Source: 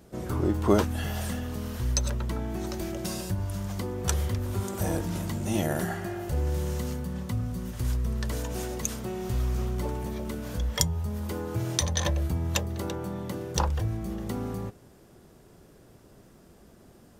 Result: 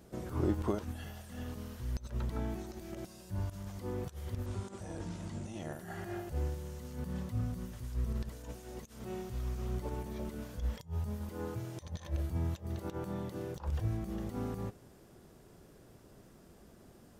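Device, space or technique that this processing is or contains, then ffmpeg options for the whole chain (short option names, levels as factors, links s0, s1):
de-esser from a sidechain: -filter_complex "[0:a]asettb=1/sr,asplit=3[s0][s1][s2];[s0]atrim=end=4.464[s3];[s1]atrim=start=4.46:end=5.73,asetpts=PTS-STARTPTS,afade=t=in:d=0.004:c=qsin,afade=t=out:st=1.266:d=0.004:c=qsin,lowpass=f=8800:w=0.5412,lowpass=f=8800:w=1.3066[s4];[s2]atrim=start=5.726[s5];[s3][s4]acrossfade=d=0.004:c1=hsin:c2=qsin[s6];[s6][s5]acrossfade=d=0.004:c1=qsin:c2=hsin,asplit=2[s7][s8];[s8]highpass=f=5300:w=0.5412,highpass=f=5300:w=1.3066,apad=whole_len=758439[s9];[s7][s9]sidechaincompress=threshold=0.002:ratio=8:attack=1.7:release=51,volume=0.668"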